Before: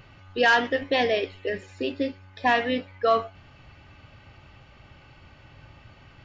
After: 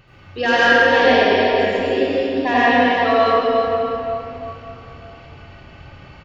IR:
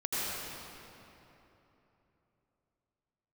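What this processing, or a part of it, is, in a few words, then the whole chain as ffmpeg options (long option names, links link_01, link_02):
cave: -filter_complex "[0:a]aecho=1:1:352:0.355[link_01];[1:a]atrim=start_sample=2205[link_02];[link_01][link_02]afir=irnorm=-1:irlink=0,volume=1dB"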